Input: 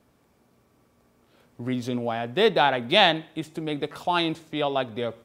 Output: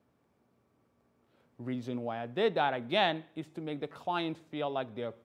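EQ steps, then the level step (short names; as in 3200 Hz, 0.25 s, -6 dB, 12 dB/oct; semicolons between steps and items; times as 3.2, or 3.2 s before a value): HPF 69 Hz; high shelf 3400 Hz -9.5 dB; -8.0 dB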